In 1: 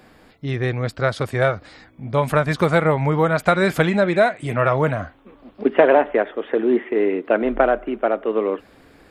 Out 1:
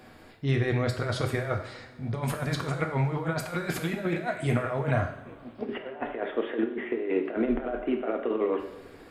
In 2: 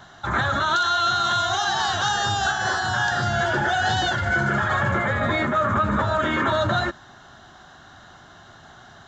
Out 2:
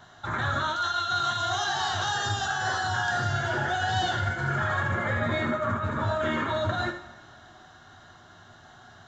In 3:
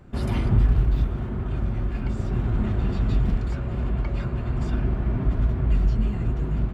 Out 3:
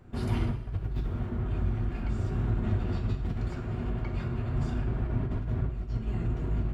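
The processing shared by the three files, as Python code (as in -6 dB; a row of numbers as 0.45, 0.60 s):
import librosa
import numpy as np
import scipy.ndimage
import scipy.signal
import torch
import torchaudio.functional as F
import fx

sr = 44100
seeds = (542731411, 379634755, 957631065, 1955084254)

y = fx.over_compress(x, sr, threshold_db=-22.0, ratio=-0.5)
y = fx.rev_double_slope(y, sr, seeds[0], early_s=0.66, late_s=3.3, knee_db=-21, drr_db=3.5)
y = y * librosa.db_to_amplitude(-7.0)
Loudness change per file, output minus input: -10.0, -5.5, -6.5 LU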